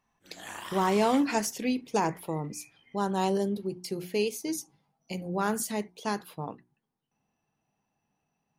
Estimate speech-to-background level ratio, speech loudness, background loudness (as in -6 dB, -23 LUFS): 10.5 dB, -30.5 LUFS, -41.0 LUFS